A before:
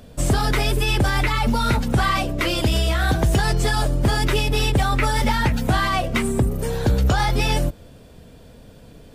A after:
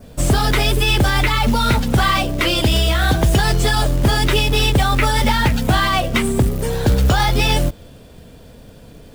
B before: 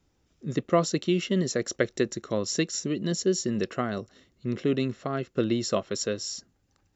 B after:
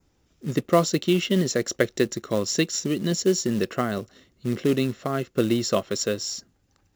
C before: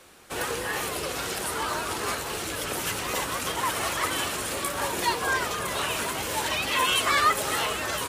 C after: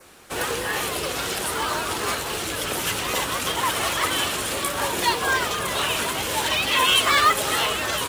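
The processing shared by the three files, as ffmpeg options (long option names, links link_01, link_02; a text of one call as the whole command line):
ffmpeg -i in.wav -af "adynamicequalizer=threshold=0.0112:dfrequency=3300:dqfactor=2.3:tfrequency=3300:tqfactor=2.3:attack=5:release=100:ratio=0.375:range=2:mode=boostabove:tftype=bell,acrusher=bits=5:mode=log:mix=0:aa=0.000001,volume=3.5dB" out.wav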